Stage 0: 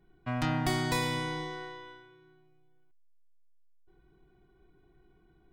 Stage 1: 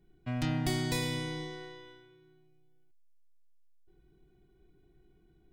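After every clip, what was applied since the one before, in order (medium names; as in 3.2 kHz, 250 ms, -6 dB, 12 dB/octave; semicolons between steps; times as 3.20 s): peaking EQ 1.1 kHz -10.5 dB 1.4 oct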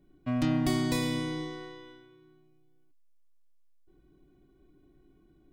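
small resonant body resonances 280/570/1100 Hz, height 13 dB, ringing for 60 ms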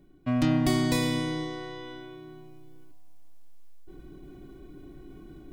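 reverse; upward compressor, threshold -37 dBFS; reverse; bucket-brigade echo 171 ms, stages 2048, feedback 73%, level -21 dB; trim +3.5 dB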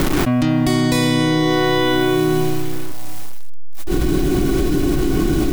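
bit crusher 10-bit; level flattener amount 100%; trim +5.5 dB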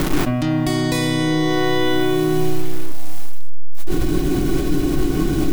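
simulated room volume 440 m³, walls furnished, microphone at 0.49 m; trim -2.5 dB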